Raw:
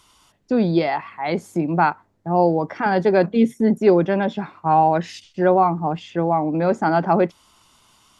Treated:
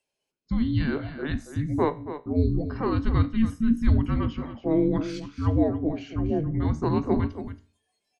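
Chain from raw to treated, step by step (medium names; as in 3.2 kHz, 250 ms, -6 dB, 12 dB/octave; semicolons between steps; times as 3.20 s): spectral noise reduction 22 dB; feedback comb 54 Hz, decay 0.41 s, harmonics all, mix 50%; frequency shift -450 Hz; delay 278 ms -11.5 dB; trim -2 dB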